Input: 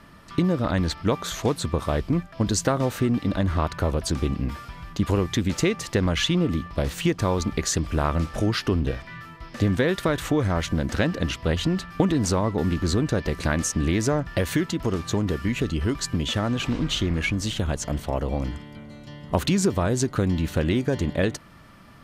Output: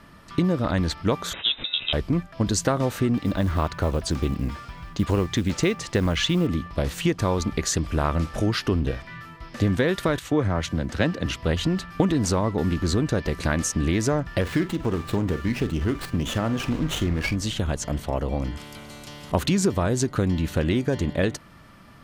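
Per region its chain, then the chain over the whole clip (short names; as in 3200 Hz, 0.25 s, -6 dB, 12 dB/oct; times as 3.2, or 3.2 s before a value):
1.33–1.93 CVSD 64 kbps + low shelf 140 Hz -7.5 dB + inverted band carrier 3800 Hz
3.17–6.47 LPF 8700 Hz + short-mantissa float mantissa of 4-bit
10.19–11.26 HPF 53 Hz + high shelf 8000 Hz -6 dB + three-band expander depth 70%
14.41–17.36 median filter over 5 samples + doubler 45 ms -13 dB + running maximum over 5 samples
18.57–19.32 notch 1800 Hz, Q 5.3 + spectral compressor 2:1
whole clip: dry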